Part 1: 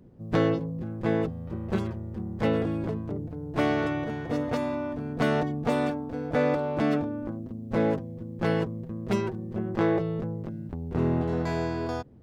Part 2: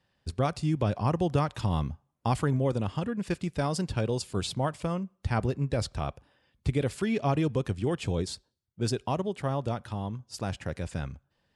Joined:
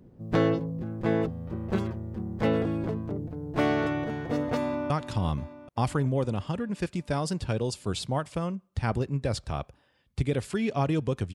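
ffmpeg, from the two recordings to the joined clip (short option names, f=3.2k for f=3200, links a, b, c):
-filter_complex "[0:a]apad=whole_dur=11.34,atrim=end=11.34,atrim=end=4.902[a];[1:a]atrim=start=1.378:end=7.82[b];[a][b]acrossfade=d=0.004:c1=hsin:c2=hsin,asplit=2[c][d];[d]afade=t=in:st=4.59:d=0.01,afade=t=out:st=4.9:d=0.01,aecho=0:1:390|780|1170|1560|1950|2340|2730|3120:0.251189|0.163273|0.106127|0.0689827|0.0448387|0.0291452|0.0189444|0.0123138[e];[c][e]amix=inputs=2:normalize=0"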